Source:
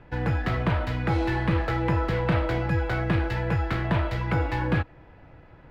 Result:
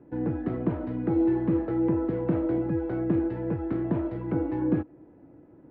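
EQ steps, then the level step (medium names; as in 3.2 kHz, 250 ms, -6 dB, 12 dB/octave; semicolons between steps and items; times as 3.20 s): band-pass filter 300 Hz, Q 2.9; distance through air 83 m; +8.0 dB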